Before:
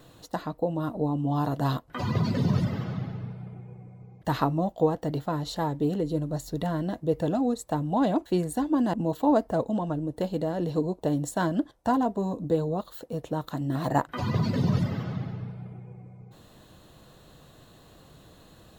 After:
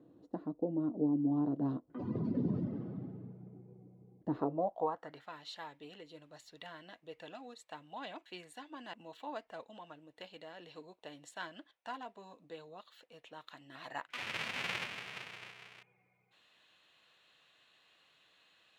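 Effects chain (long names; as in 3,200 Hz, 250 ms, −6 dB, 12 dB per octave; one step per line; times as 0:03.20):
0:14.10–0:15.83: each half-wave held at its own peak
band-pass filter sweep 300 Hz → 2,500 Hz, 0:04.30–0:05.31
level −1 dB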